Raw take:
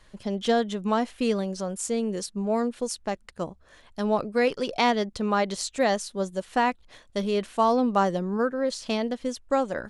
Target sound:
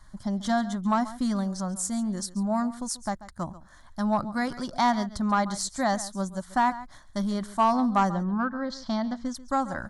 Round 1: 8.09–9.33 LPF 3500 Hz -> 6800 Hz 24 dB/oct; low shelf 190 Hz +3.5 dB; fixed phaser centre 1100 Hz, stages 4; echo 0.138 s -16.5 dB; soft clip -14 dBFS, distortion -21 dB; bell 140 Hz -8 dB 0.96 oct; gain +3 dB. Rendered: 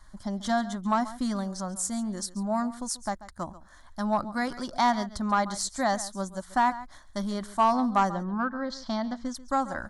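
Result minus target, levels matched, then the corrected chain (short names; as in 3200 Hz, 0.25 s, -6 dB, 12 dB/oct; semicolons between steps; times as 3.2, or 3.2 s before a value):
125 Hz band -3.0 dB
8.09–9.33 LPF 3500 Hz -> 6800 Hz 24 dB/oct; low shelf 190 Hz +3.5 dB; fixed phaser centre 1100 Hz, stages 4; echo 0.138 s -16.5 dB; soft clip -14 dBFS, distortion -21 dB; gain +3 dB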